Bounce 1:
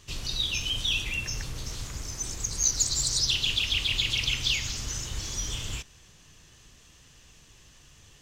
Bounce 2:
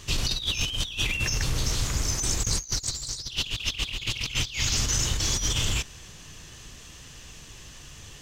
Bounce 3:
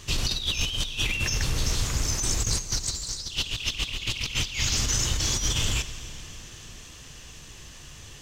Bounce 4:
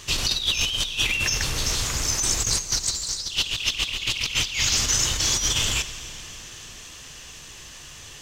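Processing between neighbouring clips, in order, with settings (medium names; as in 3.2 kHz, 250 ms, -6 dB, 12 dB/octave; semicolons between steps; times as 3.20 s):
compressor with a negative ratio -33 dBFS, ratio -0.5; trim +6 dB
plate-style reverb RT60 4.4 s, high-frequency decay 0.95×, DRR 11.5 dB
bass shelf 360 Hz -8.5 dB; trim +5 dB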